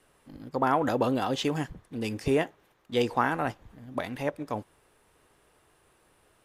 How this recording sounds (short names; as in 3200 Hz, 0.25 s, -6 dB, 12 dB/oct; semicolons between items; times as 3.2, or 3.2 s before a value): noise floor -66 dBFS; spectral tilt -4.5 dB/oct